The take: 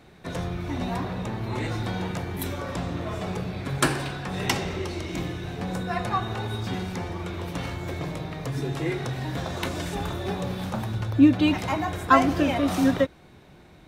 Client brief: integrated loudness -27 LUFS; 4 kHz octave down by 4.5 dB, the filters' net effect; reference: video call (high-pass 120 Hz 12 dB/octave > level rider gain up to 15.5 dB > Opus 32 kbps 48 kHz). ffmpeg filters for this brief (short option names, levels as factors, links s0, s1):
-af "highpass=120,equalizer=f=4000:t=o:g=-6,dynaudnorm=m=5.96,volume=1.12" -ar 48000 -c:a libopus -b:a 32k